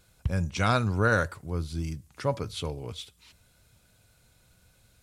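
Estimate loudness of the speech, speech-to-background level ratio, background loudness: -29.5 LUFS, 7.5 dB, -37.0 LUFS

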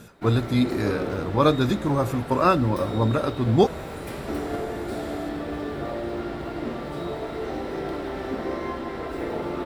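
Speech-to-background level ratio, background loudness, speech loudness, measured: 9.0 dB, -32.0 LUFS, -23.0 LUFS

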